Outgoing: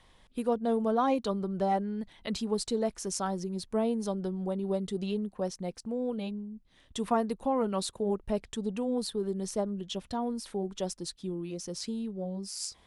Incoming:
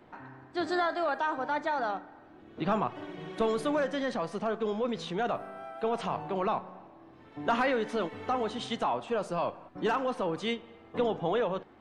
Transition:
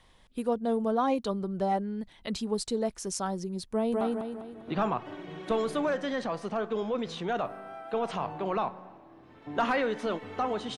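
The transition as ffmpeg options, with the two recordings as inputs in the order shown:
-filter_complex "[0:a]apad=whole_dur=10.77,atrim=end=10.77,atrim=end=4.012[s0];[1:a]atrim=start=1.908:end=8.67[s1];[s0][s1]acrossfade=d=0.004:c1=hsin:c2=hsin,asplit=2[s2][s3];[s3]afade=t=in:st=3.66:d=0.01,afade=t=out:st=4.01:d=0.01,aecho=0:1:200|400|600|800|1000|1200:0.891251|0.401063|0.180478|0.0812152|0.0365469|0.0164461[s4];[s2][s4]amix=inputs=2:normalize=0"

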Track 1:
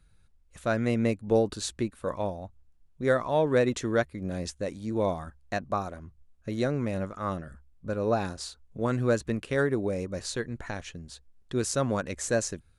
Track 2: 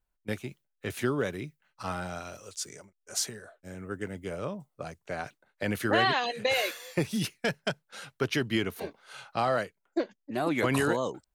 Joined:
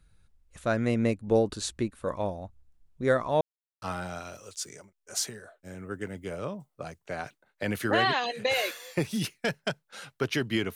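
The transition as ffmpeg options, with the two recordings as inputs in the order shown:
-filter_complex "[0:a]apad=whole_dur=10.75,atrim=end=10.75,asplit=2[s0][s1];[s0]atrim=end=3.41,asetpts=PTS-STARTPTS,afade=t=out:st=3.406:d=0.004:c=hsin[s2];[s1]atrim=start=3.41:end=3.82,asetpts=PTS-STARTPTS,volume=0[s3];[1:a]atrim=start=1.82:end=8.75,asetpts=PTS-STARTPTS,afade=t=in:d=0.004:c=hsin[s4];[s2][s3][s4]concat=n=3:v=0:a=1"

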